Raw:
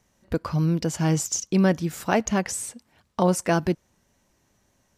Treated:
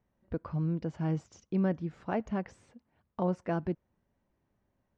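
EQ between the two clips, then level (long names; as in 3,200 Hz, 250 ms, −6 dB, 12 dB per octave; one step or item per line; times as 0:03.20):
head-to-tape spacing loss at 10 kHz 38 dB
−8.0 dB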